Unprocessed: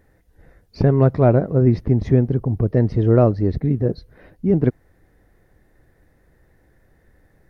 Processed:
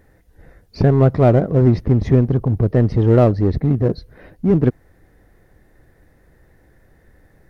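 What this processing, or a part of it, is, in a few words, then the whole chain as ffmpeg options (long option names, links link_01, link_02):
parallel distortion: -filter_complex "[0:a]asplit=2[link_01][link_02];[link_02]asoftclip=type=hard:threshold=-19.5dB,volume=-4dB[link_03];[link_01][link_03]amix=inputs=2:normalize=0"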